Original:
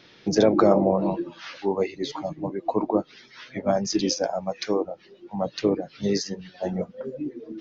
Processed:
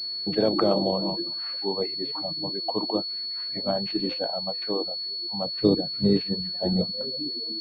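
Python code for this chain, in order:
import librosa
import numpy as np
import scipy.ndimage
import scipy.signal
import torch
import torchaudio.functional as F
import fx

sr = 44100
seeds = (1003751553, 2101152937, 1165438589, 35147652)

y = fx.low_shelf(x, sr, hz=380.0, db=12.0, at=(5.61, 7.05))
y = fx.pwm(y, sr, carrier_hz=4400.0)
y = y * librosa.db_to_amplitude(-4.5)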